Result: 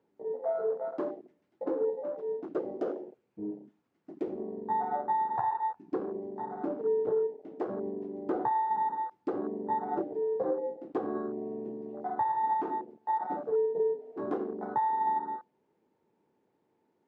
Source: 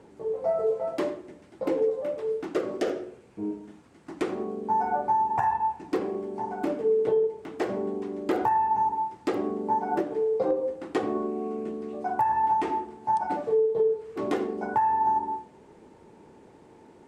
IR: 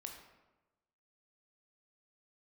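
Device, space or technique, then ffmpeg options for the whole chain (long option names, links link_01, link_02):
over-cleaned archive recording: -af "highpass=120,lowpass=5700,afwtdn=0.0251,volume=-5dB"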